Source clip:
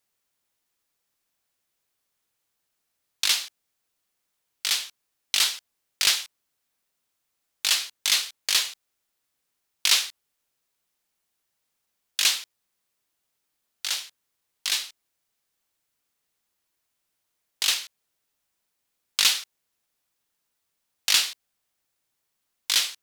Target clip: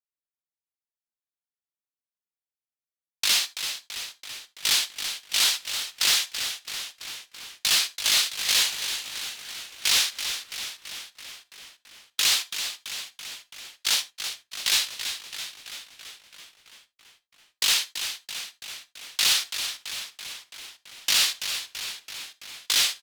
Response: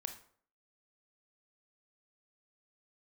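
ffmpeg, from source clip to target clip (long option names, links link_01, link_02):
-filter_complex "[0:a]agate=range=-31dB:threshold=-31dB:ratio=16:detection=peak,alimiter=limit=-16dB:level=0:latency=1:release=23,asoftclip=type=hard:threshold=-23dB,asplit=9[link_01][link_02][link_03][link_04][link_05][link_06][link_07][link_08][link_09];[link_02]adelay=333,afreqshift=-110,volume=-9dB[link_10];[link_03]adelay=666,afreqshift=-220,volume=-13dB[link_11];[link_04]adelay=999,afreqshift=-330,volume=-17dB[link_12];[link_05]adelay=1332,afreqshift=-440,volume=-21dB[link_13];[link_06]adelay=1665,afreqshift=-550,volume=-25.1dB[link_14];[link_07]adelay=1998,afreqshift=-660,volume=-29.1dB[link_15];[link_08]adelay=2331,afreqshift=-770,volume=-33.1dB[link_16];[link_09]adelay=2664,afreqshift=-880,volume=-37.1dB[link_17];[link_01][link_10][link_11][link_12][link_13][link_14][link_15][link_16][link_17]amix=inputs=9:normalize=0,asplit=2[link_18][link_19];[1:a]atrim=start_sample=2205,afade=type=out:start_time=0.14:duration=0.01,atrim=end_sample=6615[link_20];[link_19][link_20]afir=irnorm=-1:irlink=0,volume=-1dB[link_21];[link_18][link_21]amix=inputs=2:normalize=0,volume=3dB"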